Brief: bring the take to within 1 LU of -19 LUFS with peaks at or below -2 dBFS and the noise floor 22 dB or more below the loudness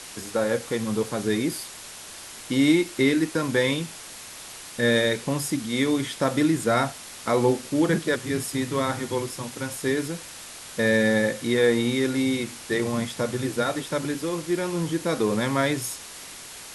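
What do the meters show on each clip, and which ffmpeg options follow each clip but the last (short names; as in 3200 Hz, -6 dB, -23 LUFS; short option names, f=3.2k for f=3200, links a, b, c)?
noise floor -41 dBFS; noise floor target -47 dBFS; loudness -25.0 LUFS; peak -8.5 dBFS; loudness target -19.0 LUFS
-> -af "afftdn=nr=6:nf=-41"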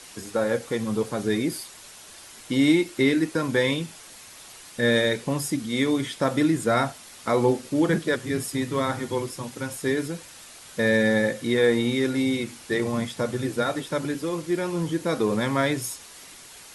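noise floor -46 dBFS; noise floor target -47 dBFS
-> -af "afftdn=nr=6:nf=-46"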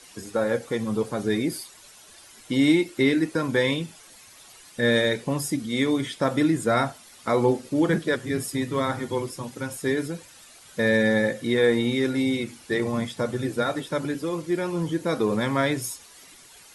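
noise floor -50 dBFS; loudness -25.0 LUFS; peak -8.5 dBFS; loudness target -19.0 LUFS
-> -af "volume=6dB"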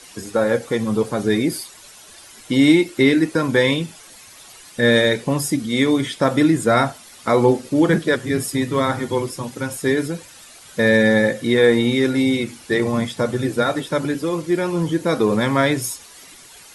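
loudness -19.0 LUFS; peak -2.5 dBFS; noise floor -44 dBFS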